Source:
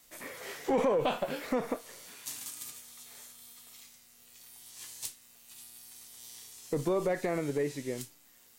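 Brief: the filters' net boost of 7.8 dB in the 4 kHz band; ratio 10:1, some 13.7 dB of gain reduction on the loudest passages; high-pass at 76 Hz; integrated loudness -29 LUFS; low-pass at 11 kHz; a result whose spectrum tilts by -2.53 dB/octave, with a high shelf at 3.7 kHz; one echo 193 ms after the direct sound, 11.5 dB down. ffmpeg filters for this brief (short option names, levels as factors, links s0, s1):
-af "highpass=76,lowpass=11000,highshelf=f=3700:g=7.5,equalizer=f=4000:t=o:g=5,acompressor=threshold=0.0126:ratio=10,aecho=1:1:193:0.266,volume=4.47"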